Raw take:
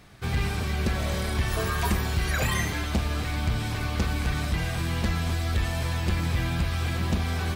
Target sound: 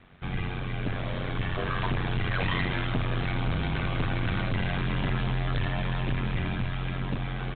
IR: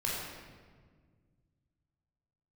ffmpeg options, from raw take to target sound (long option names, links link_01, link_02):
-af "dynaudnorm=framelen=320:gausssize=11:maxgain=7dB,aresample=8000,asoftclip=type=tanh:threshold=-20.5dB,aresample=44100,aeval=exprs='val(0)*sin(2*PI*46*n/s)':channel_layout=same"